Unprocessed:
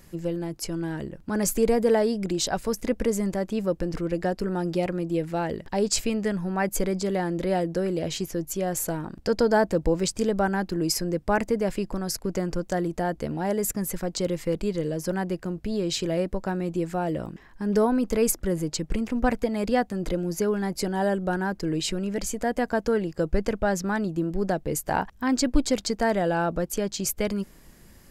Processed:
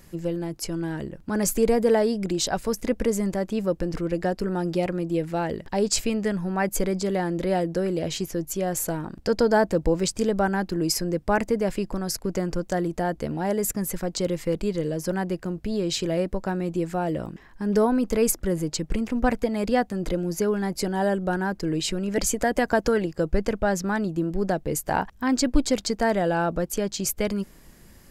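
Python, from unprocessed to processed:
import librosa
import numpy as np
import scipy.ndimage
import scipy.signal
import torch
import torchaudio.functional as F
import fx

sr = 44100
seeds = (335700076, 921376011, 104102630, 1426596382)

y = fx.hpss(x, sr, part='percussive', gain_db=6, at=(22.08, 23.06))
y = F.gain(torch.from_numpy(y), 1.0).numpy()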